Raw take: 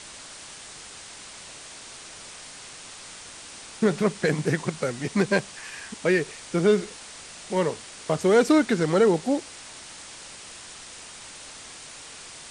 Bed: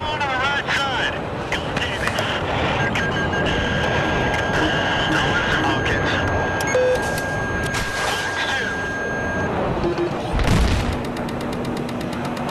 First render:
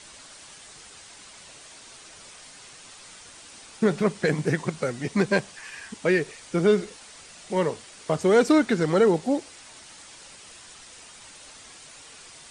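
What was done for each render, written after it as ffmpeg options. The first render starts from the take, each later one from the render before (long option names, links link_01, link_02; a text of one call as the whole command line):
ffmpeg -i in.wav -af "afftdn=noise_reduction=6:noise_floor=-43" out.wav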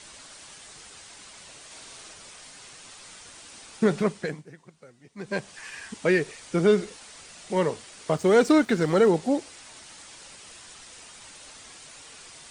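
ffmpeg -i in.wav -filter_complex "[0:a]asettb=1/sr,asplit=3[link_01][link_02][link_03];[link_01]atrim=end=1.664[link_04];[link_02]atrim=start=1.66:end=2.13,asetpts=PTS-STARTPTS,afade=type=in:duration=0.004:curve=qsin,afade=type=out:start_time=0.466:duration=0.004:curve=qsin,asplit=2[link_05][link_06];[link_06]adelay=49,volume=-3dB[link_07];[link_05][link_07]amix=inputs=2:normalize=0,atrim=end_sample=20727[link_08];[link_03]atrim=start=2.126[link_09];[link_04][link_08]acrossfade=duration=0.004:curve1=hsin:curve2=qsin[link_10];[link_10][link_09]acrossfade=duration=0.004:curve1=qsin:curve2=hsin,asettb=1/sr,asplit=3[link_11][link_12][link_13];[link_11]atrim=end=8.164[link_14];[link_12]atrim=start=8.16:end=9.08,asetpts=PTS-STARTPTS,afade=type=in:duration=0.004:curve=qsin,afade=type=out:start_time=0.916:duration=0.004:curve=qsin,aeval=exprs='sgn(val(0))*max(abs(val(0))-0.00376,0)':channel_layout=same[link_15];[link_13]atrim=start=9.076[link_16];[link_14][link_15]acrossfade=duration=0.004:curve1=hsin:curve2=qsin[link_17];[link_17][link_16]acrossfade=duration=0.004:curve1=qsin:curve2=hsin,asplit=3[link_18][link_19][link_20];[link_18]atrim=end=4.44,asetpts=PTS-STARTPTS,afade=type=out:start_time=3.97:duration=0.47:silence=0.0707946[link_21];[link_19]atrim=start=4.44:end=5.16,asetpts=PTS-STARTPTS,volume=-23dB[link_22];[link_20]atrim=start=5.16,asetpts=PTS-STARTPTS,afade=type=in:duration=0.47:silence=0.0707946[link_23];[link_21][link_22][link_23]concat=n=3:v=0:a=1" out.wav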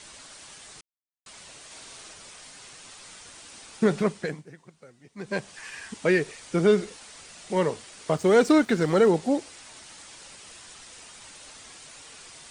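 ffmpeg -i in.wav -filter_complex "[0:a]asplit=3[link_01][link_02][link_03];[link_01]atrim=end=0.81,asetpts=PTS-STARTPTS,afade=type=out:start_time=0.806:duration=0.004:curve=hsin[link_04];[link_02]atrim=start=0.81:end=1.26,asetpts=PTS-STARTPTS,volume=0[link_05];[link_03]atrim=start=1.26,asetpts=PTS-STARTPTS,afade=type=in:duration=0.004:curve=hsin[link_06];[link_04][link_05][link_06]concat=n=3:v=0:a=1" out.wav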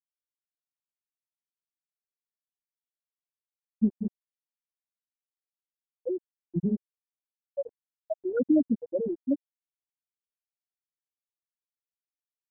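ffmpeg -i in.wav -af "afftfilt=real='re*gte(hypot(re,im),0.708)':imag='im*gte(hypot(re,im),0.708)':win_size=1024:overlap=0.75,aecho=1:1:1.2:0.9" out.wav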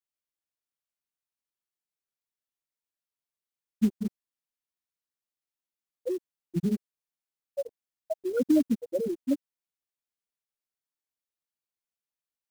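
ffmpeg -i in.wav -af "acrusher=bits=6:mode=log:mix=0:aa=0.000001" out.wav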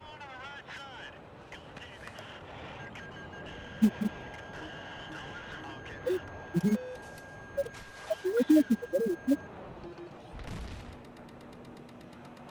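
ffmpeg -i in.wav -i bed.wav -filter_complex "[1:a]volume=-24dB[link_01];[0:a][link_01]amix=inputs=2:normalize=0" out.wav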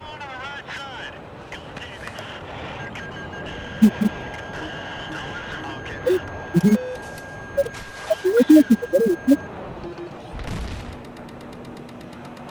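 ffmpeg -i in.wav -af "volume=11.5dB,alimiter=limit=-3dB:level=0:latency=1" out.wav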